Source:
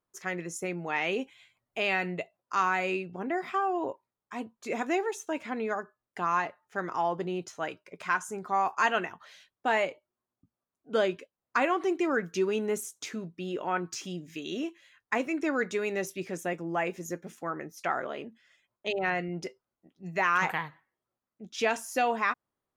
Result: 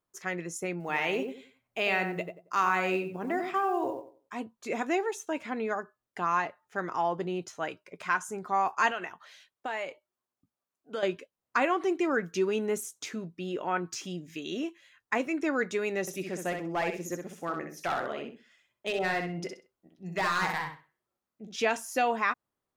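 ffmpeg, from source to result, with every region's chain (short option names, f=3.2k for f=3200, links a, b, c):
-filter_complex "[0:a]asettb=1/sr,asplit=3[a][b][c];[a]atrim=end=0.804[d];[b]atrim=start=0.8:end=4.34,asetpts=PTS-STARTPTS,afade=t=in:d=0.004:c=qsin,afade=t=out:st=3.536:d=0.004:c=qsin,lowshelf=f=110:g=-3.5,asplit=2[e][f];[f]adelay=91,lowpass=f=1.2k:p=1,volume=-4.5dB,asplit=2[g][h];[h]adelay=91,lowpass=f=1.2k:p=1,volume=0.27,asplit=2[i][j];[j]adelay=91,lowpass=f=1.2k:p=1,volume=0.27,asplit=2[k][l];[l]adelay=91,lowpass=f=1.2k:p=1,volume=0.27[m];[e][g][i][k][m]amix=inputs=5:normalize=0,atrim=end_sample=156114,acrusher=bits=9:mode=log:mix=0:aa=0.000001[n];[c]atrim=start=4.336[o];[d][n]acrossfade=d=0.004:c1=hsin:c2=qsin[p];[p][o]acrossfade=d=0.004:c1=qsin:c2=hsin,asettb=1/sr,asplit=3[q][r][s];[q]atrim=end=8.914[t];[r]atrim=start=8.91:end=11.03,asetpts=PTS-STARTPTS,afade=t=in:d=0.004:c=qsin,afade=t=out:st=2.116:d=0.004:c=qsin,lowshelf=f=310:g=-9,acompressor=threshold=-30dB:ratio=5:attack=3.2:release=140:knee=1:detection=peak[u];[s]atrim=start=11.026[v];[t][u]acrossfade=d=0.004:c1=hsin:c2=qsin[w];[w][v]acrossfade=d=0.004:c1=qsin:c2=hsin,asettb=1/sr,asplit=3[x][y][z];[x]atrim=end=16.014[aa];[y]atrim=start=16.01:end=21.56,asetpts=PTS-STARTPTS,afade=t=in:d=0.004:c=qsin,afade=t=out:st=5.546:d=0.004:c=qsin,asoftclip=type=hard:threshold=-24.5dB,aecho=1:1:64|128|192:0.531|0.127|0.0306,atrim=end_sample=244755[ab];[z]atrim=start=21.556[ac];[aa][ab]acrossfade=d=0.004:c1=hsin:c2=qsin[ad];[ad][ac]acrossfade=d=0.004:c1=qsin:c2=hsin"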